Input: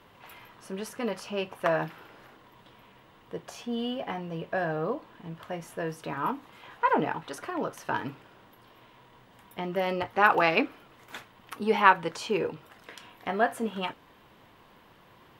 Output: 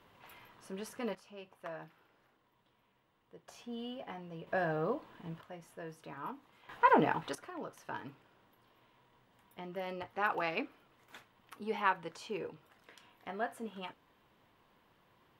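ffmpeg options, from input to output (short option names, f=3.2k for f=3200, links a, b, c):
-af "asetnsamples=n=441:p=0,asendcmd='1.15 volume volume -18.5dB;3.48 volume volume -11dB;4.47 volume volume -4dB;5.41 volume volume -13dB;6.69 volume volume -1dB;7.35 volume volume -12dB',volume=-7dB"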